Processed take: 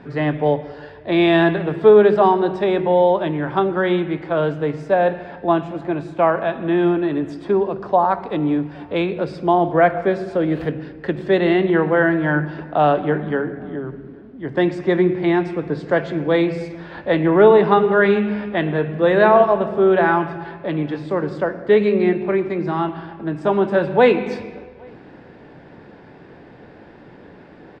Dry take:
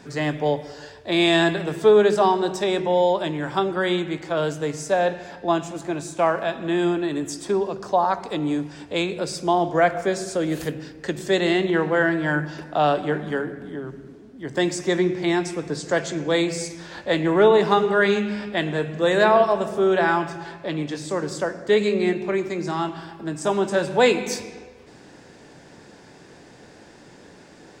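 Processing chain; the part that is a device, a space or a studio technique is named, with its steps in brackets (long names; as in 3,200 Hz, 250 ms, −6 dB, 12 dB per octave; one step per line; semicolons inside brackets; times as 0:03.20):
shout across a valley (high-frequency loss of the air 420 metres; slap from a distant wall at 140 metres, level −29 dB)
level +5.5 dB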